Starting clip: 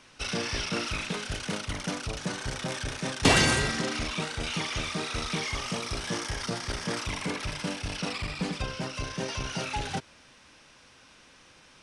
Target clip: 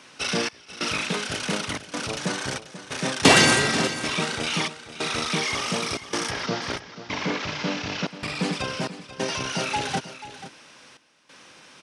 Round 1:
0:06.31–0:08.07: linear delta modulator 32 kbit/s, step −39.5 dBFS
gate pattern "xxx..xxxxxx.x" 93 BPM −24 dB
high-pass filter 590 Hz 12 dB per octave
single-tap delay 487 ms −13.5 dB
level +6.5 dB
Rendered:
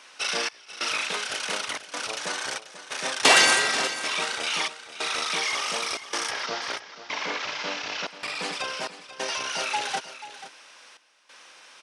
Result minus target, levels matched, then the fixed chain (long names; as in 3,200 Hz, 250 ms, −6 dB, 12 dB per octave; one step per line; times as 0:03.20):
125 Hz band −18.5 dB
0:06.31–0:08.07: linear delta modulator 32 kbit/s, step −39.5 dBFS
gate pattern "xxx..xxxxxx.x" 93 BPM −24 dB
high-pass filter 160 Hz 12 dB per octave
single-tap delay 487 ms −13.5 dB
level +6.5 dB